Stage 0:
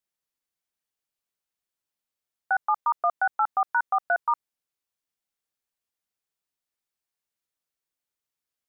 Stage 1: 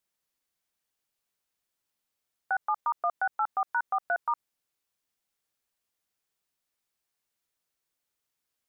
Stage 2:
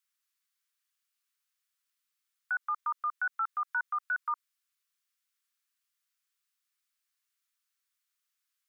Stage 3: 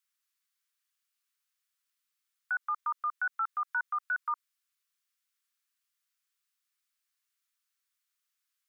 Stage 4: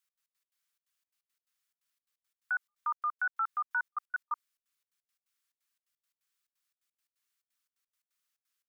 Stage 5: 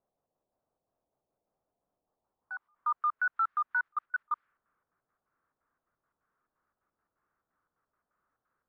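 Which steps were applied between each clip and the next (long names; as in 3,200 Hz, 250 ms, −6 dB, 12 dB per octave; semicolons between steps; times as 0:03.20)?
in parallel at 0 dB: output level in coarse steps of 11 dB; on the sum: brickwall limiter −22 dBFS, peak gain reduction 12.5 dB; level +2 dB
Butterworth high-pass 1,100 Hz 48 dB per octave
no processing that can be heard
gate pattern "x.x.x.xxx.x" 174 BPM −60 dB
low-pass that shuts in the quiet parts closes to 820 Hz, open at −29.5 dBFS; power curve on the samples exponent 0.7; low-pass filter sweep 700 Hz → 1,400 Hz, 0:01.96–0:03.21; level −6 dB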